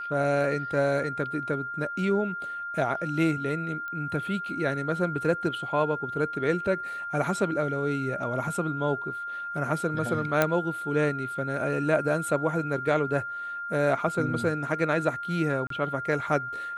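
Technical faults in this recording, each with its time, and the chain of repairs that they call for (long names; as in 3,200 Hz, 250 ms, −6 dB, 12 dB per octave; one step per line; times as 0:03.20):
whistle 1,400 Hz −32 dBFS
0:03.88: click −25 dBFS
0:10.42: click −8 dBFS
0:15.67–0:15.70: drop-out 33 ms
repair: click removal
notch filter 1,400 Hz, Q 30
repair the gap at 0:15.67, 33 ms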